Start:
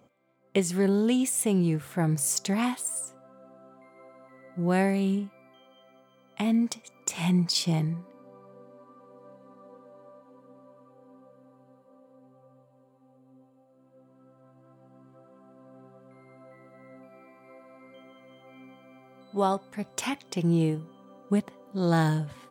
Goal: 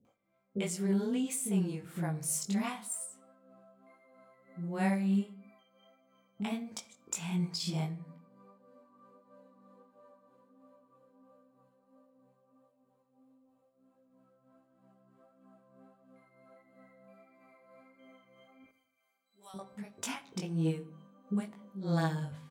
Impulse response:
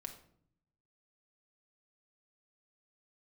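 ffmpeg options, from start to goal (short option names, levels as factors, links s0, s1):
-filter_complex "[0:a]asettb=1/sr,asplit=3[s0][s1][s2];[s0]atrim=end=18.644[s3];[s1]atrim=start=18.64:end=19.54,asetpts=PTS-STARTPTS,afade=t=in:d=0.004:c=qsin,afade=t=out:st=0.896:d=0.004:c=qsin,aderivative[s4];[s2]atrim=start=19.536[s5];[s3][s4]acrossfade=d=0.004:c1=hsin:c2=qsin[s6];[s6][s5]acrossfade=d=0.004:c1=qsin:c2=hsin,flanger=delay=18.5:depth=2.6:speed=1.5,tremolo=f=3.1:d=0.53,acrossover=split=400[s7][s8];[s8]adelay=50[s9];[s7][s9]amix=inputs=2:normalize=0,asplit=2[s10][s11];[1:a]atrim=start_sample=2205,afade=t=out:st=0.36:d=0.01,atrim=end_sample=16317[s12];[s11][s12]afir=irnorm=-1:irlink=0,volume=0.944[s13];[s10][s13]amix=inputs=2:normalize=0,volume=0.501"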